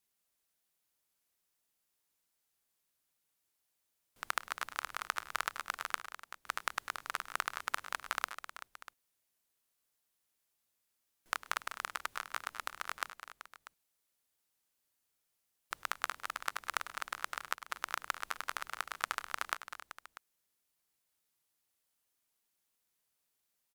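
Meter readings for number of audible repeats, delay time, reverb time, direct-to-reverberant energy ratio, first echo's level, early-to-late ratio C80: 4, 103 ms, no reverb audible, no reverb audible, −19.0 dB, no reverb audible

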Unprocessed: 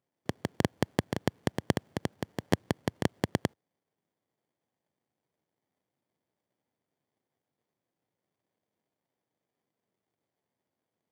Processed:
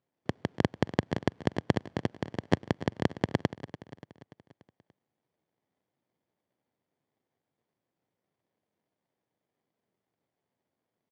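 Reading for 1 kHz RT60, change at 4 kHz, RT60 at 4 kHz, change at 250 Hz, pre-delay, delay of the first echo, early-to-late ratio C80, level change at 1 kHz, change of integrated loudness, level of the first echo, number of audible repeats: no reverb audible, −1.0 dB, no reverb audible, +1.5 dB, no reverb audible, 290 ms, no reverb audible, +1.0 dB, +1.5 dB, −15.0 dB, 4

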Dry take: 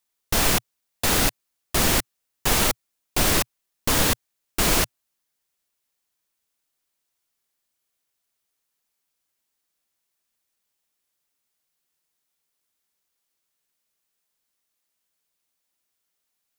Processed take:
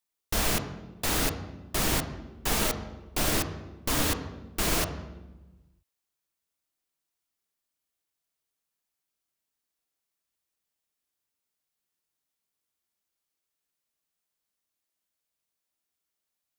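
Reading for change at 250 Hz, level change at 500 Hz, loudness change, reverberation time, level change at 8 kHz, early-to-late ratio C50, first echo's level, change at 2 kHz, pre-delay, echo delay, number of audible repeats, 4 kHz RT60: −4.0 dB, −5.0 dB, −6.5 dB, 1.1 s, −7.0 dB, 9.5 dB, no echo audible, −6.5 dB, 3 ms, no echo audible, no echo audible, 0.85 s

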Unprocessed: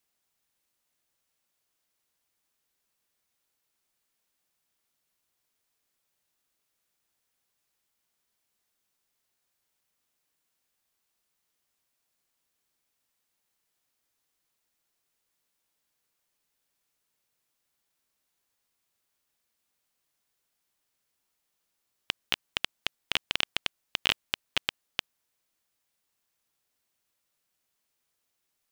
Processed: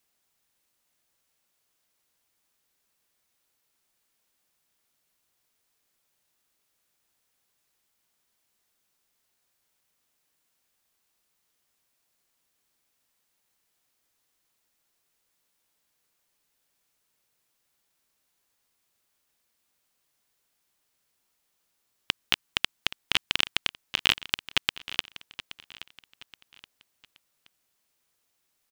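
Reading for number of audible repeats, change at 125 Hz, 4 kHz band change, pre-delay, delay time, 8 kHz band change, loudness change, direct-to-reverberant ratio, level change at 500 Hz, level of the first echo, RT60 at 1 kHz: 3, +4.5 dB, +4.0 dB, no reverb audible, 824 ms, +4.0 dB, +4.0 dB, no reverb audible, −0.5 dB, −15.5 dB, no reverb audible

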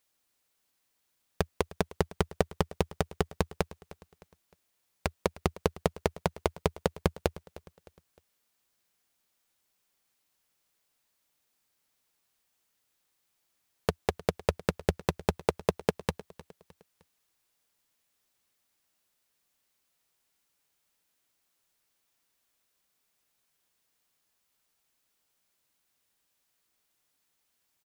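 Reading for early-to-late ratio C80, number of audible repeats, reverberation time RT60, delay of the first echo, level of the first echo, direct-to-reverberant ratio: no reverb audible, 3, no reverb audible, 307 ms, −19.0 dB, no reverb audible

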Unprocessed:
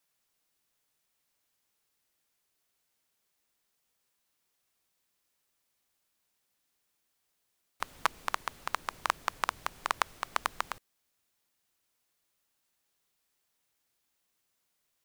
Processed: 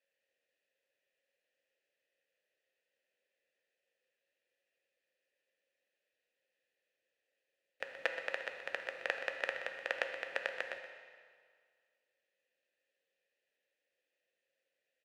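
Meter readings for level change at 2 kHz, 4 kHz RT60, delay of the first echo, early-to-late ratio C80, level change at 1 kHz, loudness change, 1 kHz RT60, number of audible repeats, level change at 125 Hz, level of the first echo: 0.0 dB, 1.7 s, 125 ms, 6.0 dB, −15.0 dB, −4.5 dB, 1.9 s, 1, below −15 dB, −11.5 dB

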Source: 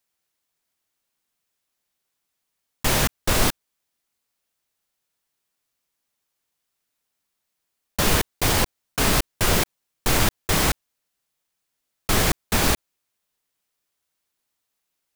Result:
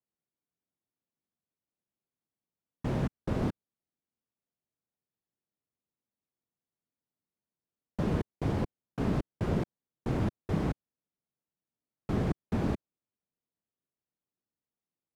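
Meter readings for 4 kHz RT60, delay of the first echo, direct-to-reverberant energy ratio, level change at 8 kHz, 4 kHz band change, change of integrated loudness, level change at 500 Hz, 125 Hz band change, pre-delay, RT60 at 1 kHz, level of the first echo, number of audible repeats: no reverb audible, no echo audible, no reverb audible, below −30 dB, −27.0 dB, −11.5 dB, −8.5 dB, −4.5 dB, no reverb audible, no reverb audible, no echo audible, no echo audible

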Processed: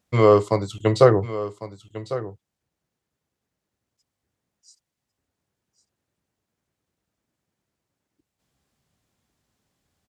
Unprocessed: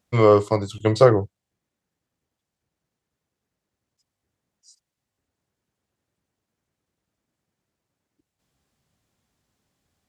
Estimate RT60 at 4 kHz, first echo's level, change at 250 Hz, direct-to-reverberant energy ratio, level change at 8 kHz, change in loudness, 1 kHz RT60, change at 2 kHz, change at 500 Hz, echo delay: no reverb audible, −14.0 dB, 0.0 dB, no reverb audible, 0.0 dB, −1.5 dB, no reverb audible, 0.0 dB, 0.0 dB, 1,101 ms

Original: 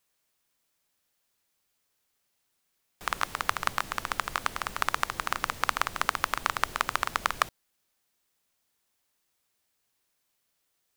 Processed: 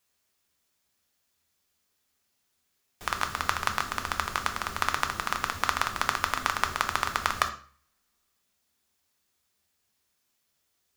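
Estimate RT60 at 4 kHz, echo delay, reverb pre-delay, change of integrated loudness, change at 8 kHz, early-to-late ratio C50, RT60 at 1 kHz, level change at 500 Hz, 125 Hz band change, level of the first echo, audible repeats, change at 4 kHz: 0.40 s, no echo audible, 3 ms, +1.0 dB, +2.0 dB, 12.0 dB, 0.45 s, +1.0 dB, +5.0 dB, no echo audible, no echo audible, +1.5 dB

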